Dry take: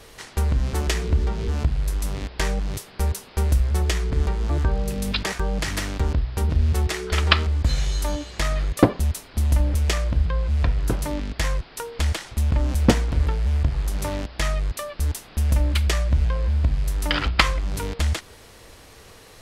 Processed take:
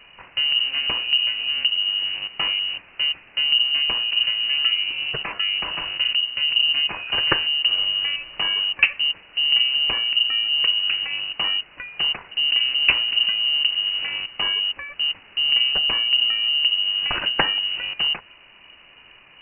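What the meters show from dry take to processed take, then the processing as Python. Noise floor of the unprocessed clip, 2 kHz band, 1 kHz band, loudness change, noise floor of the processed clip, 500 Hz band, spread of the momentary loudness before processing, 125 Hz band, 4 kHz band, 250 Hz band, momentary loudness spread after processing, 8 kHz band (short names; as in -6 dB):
-47 dBFS, +8.0 dB, -3.5 dB, +4.5 dB, -49 dBFS, -10.5 dB, 7 LU, -26.0 dB, +16.5 dB, -16.0 dB, 7 LU, under -40 dB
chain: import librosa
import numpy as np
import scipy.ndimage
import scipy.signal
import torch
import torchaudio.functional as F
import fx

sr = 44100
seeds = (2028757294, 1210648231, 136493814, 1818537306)

y = fx.freq_invert(x, sr, carrier_hz=2900)
y = F.gain(torch.from_numpy(y), -2.0).numpy()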